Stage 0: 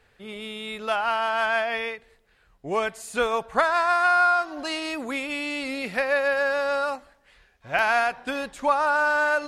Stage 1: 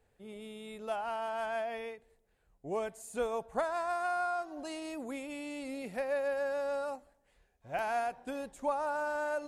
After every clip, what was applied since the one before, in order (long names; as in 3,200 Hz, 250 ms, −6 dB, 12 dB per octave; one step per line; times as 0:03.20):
flat-topped bell 2,400 Hz −9.5 dB 2.6 octaves
level −8 dB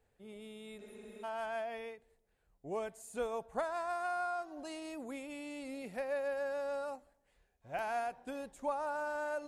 healed spectral selection 0:00.83–0:01.21, 210–9,400 Hz before
level −3.5 dB